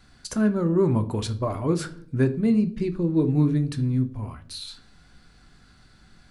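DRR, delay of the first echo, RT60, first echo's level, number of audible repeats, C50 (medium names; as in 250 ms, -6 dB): 8.5 dB, no echo, 0.60 s, no echo, no echo, 16.0 dB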